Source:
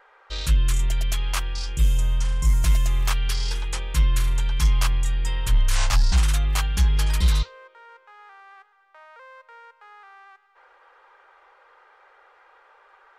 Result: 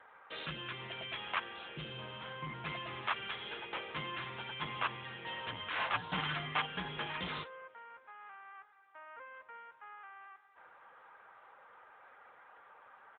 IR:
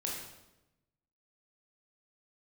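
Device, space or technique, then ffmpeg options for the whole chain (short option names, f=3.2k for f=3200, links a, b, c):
telephone: -filter_complex "[0:a]asplit=3[a][b][c];[a]afade=t=out:st=5.93:d=0.02[d];[b]aecho=1:1:6.7:0.84,afade=t=in:st=5.93:d=0.02,afade=t=out:st=6.65:d=0.02[e];[c]afade=t=in:st=6.65:d=0.02[f];[d][e][f]amix=inputs=3:normalize=0,highpass=280,lowpass=3.2k,volume=-2dB" -ar 8000 -c:a libopencore_amrnb -b:a 10200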